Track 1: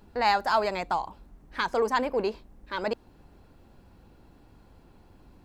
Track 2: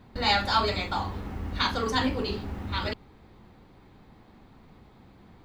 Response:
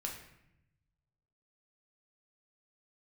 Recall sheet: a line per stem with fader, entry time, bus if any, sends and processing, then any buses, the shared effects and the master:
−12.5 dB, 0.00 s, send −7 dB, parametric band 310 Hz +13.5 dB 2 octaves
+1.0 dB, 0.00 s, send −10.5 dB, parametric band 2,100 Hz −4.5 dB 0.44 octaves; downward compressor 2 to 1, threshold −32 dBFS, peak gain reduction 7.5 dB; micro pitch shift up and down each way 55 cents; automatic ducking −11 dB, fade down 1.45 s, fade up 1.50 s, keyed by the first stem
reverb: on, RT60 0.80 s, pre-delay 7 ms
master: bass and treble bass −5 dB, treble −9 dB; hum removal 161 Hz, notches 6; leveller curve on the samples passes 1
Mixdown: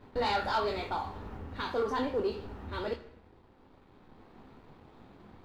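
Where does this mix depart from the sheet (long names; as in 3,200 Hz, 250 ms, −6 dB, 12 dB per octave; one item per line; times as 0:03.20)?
stem 1 −12.5 dB → −19.5 dB
master: missing hum removal 161 Hz, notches 6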